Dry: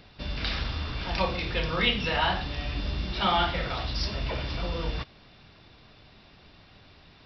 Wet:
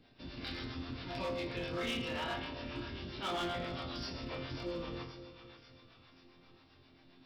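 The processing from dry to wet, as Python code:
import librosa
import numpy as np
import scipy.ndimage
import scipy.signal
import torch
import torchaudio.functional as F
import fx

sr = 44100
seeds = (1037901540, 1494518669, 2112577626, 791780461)

y = fx.peak_eq(x, sr, hz=300.0, db=13.0, octaves=0.59)
y = fx.resonator_bank(y, sr, root=41, chord='sus4', decay_s=0.66)
y = fx.echo_split(y, sr, split_hz=940.0, low_ms=260, high_ms=539, feedback_pct=52, wet_db=-12.0)
y = fx.harmonic_tremolo(y, sr, hz=7.5, depth_pct=50, crossover_hz=510.0)
y = np.clip(y, -10.0 ** (-40.0 / 20.0), 10.0 ** (-40.0 / 20.0))
y = y * librosa.db_to_amplitude(7.5)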